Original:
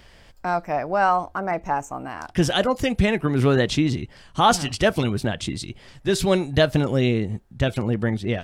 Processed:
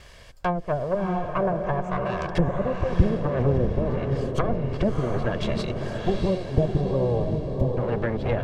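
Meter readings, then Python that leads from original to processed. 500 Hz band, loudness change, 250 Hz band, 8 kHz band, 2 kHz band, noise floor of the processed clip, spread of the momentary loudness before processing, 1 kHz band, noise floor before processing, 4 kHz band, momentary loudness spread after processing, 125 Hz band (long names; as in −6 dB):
−1.5 dB, −3.5 dB, −3.5 dB, below −15 dB, −8.5 dB, −47 dBFS, 11 LU, −7.0 dB, −51 dBFS, −13.5 dB, 5 LU, −0.5 dB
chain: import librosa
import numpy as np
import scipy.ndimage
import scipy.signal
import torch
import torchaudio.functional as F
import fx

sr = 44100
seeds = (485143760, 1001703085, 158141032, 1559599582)

y = fx.lower_of_two(x, sr, delay_ms=1.8)
y = fx.env_lowpass_down(y, sr, base_hz=360.0, full_db=-20.5)
y = fx.spec_box(y, sr, start_s=6.01, length_s=1.76, low_hz=1200.0, high_hz=11000.0, gain_db=-20)
y = fx.echo_diffused(y, sr, ms=687, feedback_pct=44, wet_db=-4.0)
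y = F.gain(torch.from_numpy(y), 3.5).numpy()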